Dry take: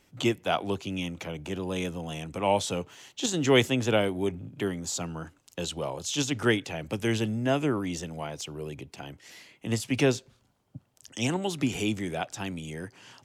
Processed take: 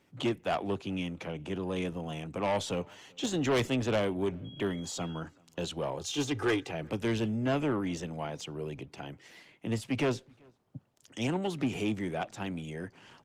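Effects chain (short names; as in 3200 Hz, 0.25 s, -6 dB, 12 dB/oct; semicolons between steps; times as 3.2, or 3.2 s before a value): HPF 94 Hz 12 dB/oct; high shelf 4900 Hz -11 dB; 4.44–5.19 whine 3300 Hz -50 dBFS; 6.01–6.71 comb 2.5 ms, depth 81%; soft clip -23 dBFS, distortion -10 dB; outdoor echo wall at 66 m, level -29 dB; Opus 24 kbps 48000 Hz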